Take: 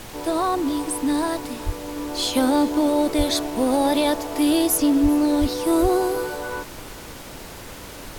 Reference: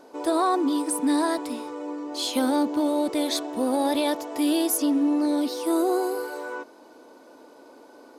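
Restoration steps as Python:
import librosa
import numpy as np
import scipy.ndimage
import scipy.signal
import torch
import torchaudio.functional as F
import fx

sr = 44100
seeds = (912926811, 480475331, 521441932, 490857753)

y = fx.fix_deplosive(x, sr, at_s=(1.65, 3.17, 5.02, 5.4, 5.81))
y = fx.noise_reduce(y, sr, print_start_s=7.46, print_end_s=7.96, reduce_db=12.0)
y = fx.fix_echo_inverse(y, sr, delay_ms=392, level_db=-21.0)
y = fx.gain(y, sr, db=fx.steps((0.0, 0.0), (1.96, -4.0)))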